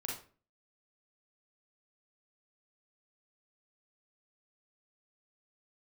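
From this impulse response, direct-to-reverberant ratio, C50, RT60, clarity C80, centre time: -3.0 dB, 3.0 dB, 0.40 s, 10.0 dB, 38 ms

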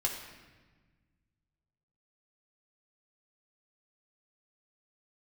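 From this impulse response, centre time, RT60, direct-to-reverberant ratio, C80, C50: 39 ms, 1.3 s, -0.5 dB, 7.0 dB, 5.0 dB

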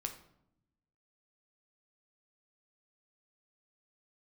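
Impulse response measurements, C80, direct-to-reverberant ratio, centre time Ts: 13.5 dB, 4.5 dB, 12 ms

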